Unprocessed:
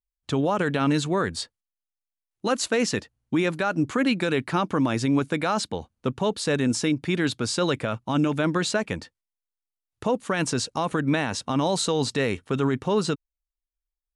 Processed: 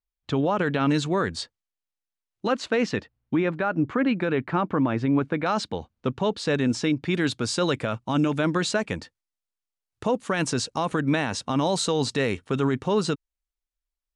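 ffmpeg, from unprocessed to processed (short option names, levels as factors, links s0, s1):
-af "asetnsamples=n=441:p=0,asendcmd='0.89 lowpass f 7000;2.47 lowpass f 3500;3.36 lowpass f 2100;5.46 lowpass f 5300;7.14 lowpass f 9600',lowpass=4400"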